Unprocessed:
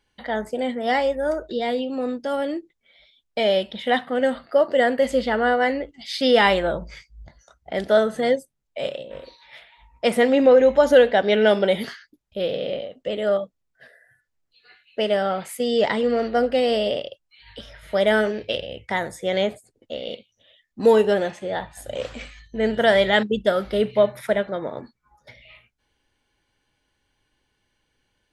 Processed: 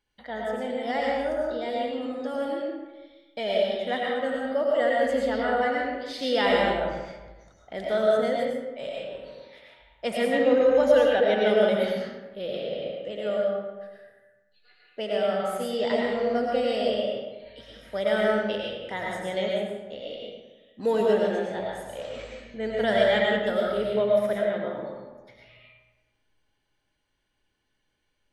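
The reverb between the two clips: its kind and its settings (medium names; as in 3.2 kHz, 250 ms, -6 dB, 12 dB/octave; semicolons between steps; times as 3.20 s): algorithmic reverb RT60 1.2 s, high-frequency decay 0.6×, pre-delay 65 ms, DRR -3 dB; trim -9.5 dB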